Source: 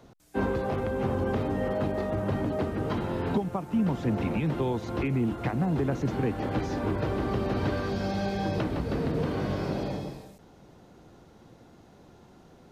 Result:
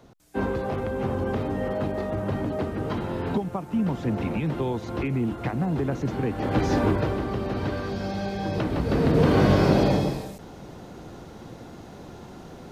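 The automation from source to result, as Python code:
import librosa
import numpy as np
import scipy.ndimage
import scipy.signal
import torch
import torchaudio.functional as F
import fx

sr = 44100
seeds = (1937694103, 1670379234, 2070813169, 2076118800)

y = fx.gain(x, sr, db=fx.line((6.29, 1.0), (6.75, 9.0), (7.27, 0.0), (8.41, 0.0), (9.37, 11.5)))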